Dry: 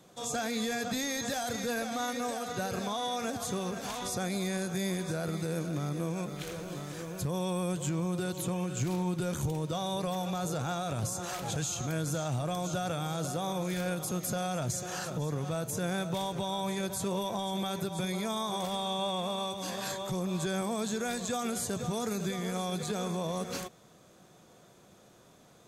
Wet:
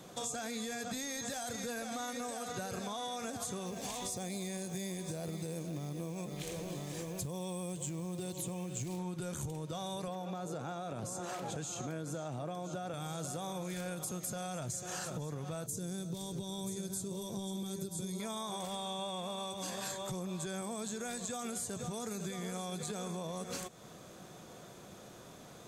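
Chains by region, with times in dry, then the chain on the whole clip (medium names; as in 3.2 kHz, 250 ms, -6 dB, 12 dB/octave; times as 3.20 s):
3.66–8.99 s: peaking EQ 1.4 kHz -14 dB 0.36 oct + companded quantiser 6-bit
10.08–12.94 s: high-pass 250 Hz + tilt EQ -2.5 dB/octave
15.66–18.20 s: high-order bell 1.3 kHz -13 dB 2.7 oct + delay 981 ms -8 dB
whole clip: dynamic bell 8.1 kHz, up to +7 dB, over -55 dBFS, Q 1.8; compression, threshold -44 dBFS; trim +6 dB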